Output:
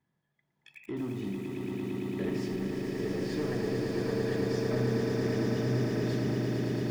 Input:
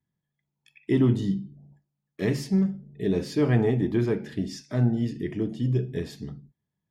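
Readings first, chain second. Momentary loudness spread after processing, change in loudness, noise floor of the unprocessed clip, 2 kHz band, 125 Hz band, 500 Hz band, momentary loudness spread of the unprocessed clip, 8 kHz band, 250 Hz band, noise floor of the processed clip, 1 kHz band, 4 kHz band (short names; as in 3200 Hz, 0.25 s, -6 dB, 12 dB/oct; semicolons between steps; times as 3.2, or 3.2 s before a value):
7 LU, -5.5 dB, -84 dBFS, -0.5 dB, -6.5 dB, -2.0 dB, 11 LU, -2.0 dB, -5.5 dB, -79 dBFS, -0.5 dB, -1.0 dB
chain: compressor 6:1, threshold -34 dBFS, peak gain reduction 16.5 dB; limiter -31 dBFS, peak gain reduction 8 dB; overdrive pedal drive 15 dB, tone 1100 Hz, clips at -31 dBFS; swelling echo 0.113 s, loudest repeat 8, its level -5 dB; lo-fi delay 80 ms, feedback 35%, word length 9-bit, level -7 dB; gain +3.5 dB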